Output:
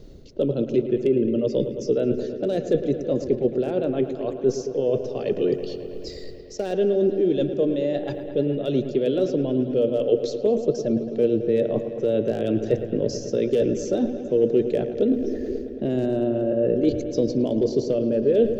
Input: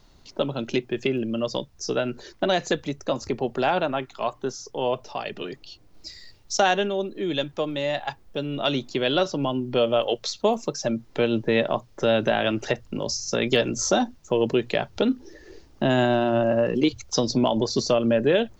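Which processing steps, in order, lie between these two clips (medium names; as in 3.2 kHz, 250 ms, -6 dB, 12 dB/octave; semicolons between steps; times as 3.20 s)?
one-sided wavefolder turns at -12.5 dBFS; reverse; compression 6:1, threshold -34 dBFS, peak gain reduction 17 dB; reverse; resonant low shelf 660 Hz +11.5 dB, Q 3; feedback echo behind a low-pass 109 ms, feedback 81%, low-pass 3 kHz, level -11 dB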